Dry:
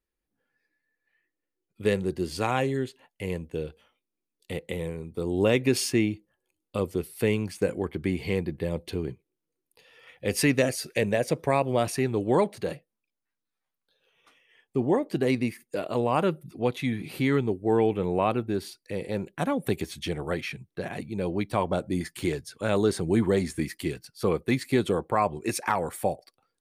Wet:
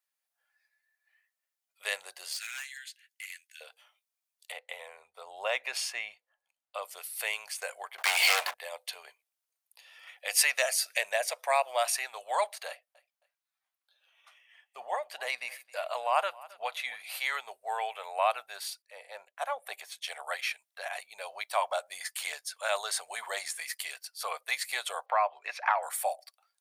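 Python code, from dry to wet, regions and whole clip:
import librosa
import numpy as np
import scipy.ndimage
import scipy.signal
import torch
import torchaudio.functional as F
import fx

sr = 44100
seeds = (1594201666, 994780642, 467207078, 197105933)

y = fx.chain(x, sr, fx.cheby_ripple_highpass(hz=1500.0, ripple_db=3),
    fx.clip_hard(threshold_db=-37.0), at=(2.33, 3.61))
y = fx.chain(y, sr, fx.lowpass(hz=2100.0, slope=6),
    fx.low_shelf(hz=140.0, db=10.5), at=(4.52, 6.83))
y = fx.chain(y, sr, fx.highpass(hz=110.0, slope=12),
    fx.low_shelf(hz=240.0, db=-11.0),
    fx.leveller(passes=5), at=(7.98, 8.54))
y = fx.chain(y, sr, fx.bass_treble(bass_db=6, treble_db=-5),
    fx.echo_feedback(ms=268, feedback_pct=25, wet_db=-21.5), at=(12.68, 17.0))
y = fx.chain(y, sr, fx.highpass(hz=140.0, slope=24),
    fx.high_shelf(hz=2300.0, db=-9.5),
    fx.band_widen(depth_pct=70), at=(18.82, 20.08))
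y = fx.chain(y, sr, fx.air_absorb(metres=300.0),
    fx.band_squash(depth_pct=70), at=(25.06, 25.83))
y = scipy.signal.sosfilt(scipy.signal.ellip(4, 1.0, 50, 640.0, 'highpass', fs=sr, output='sos'), y)
y = fx.high_shelf(y, sr, hz=3600.0, db=7.5)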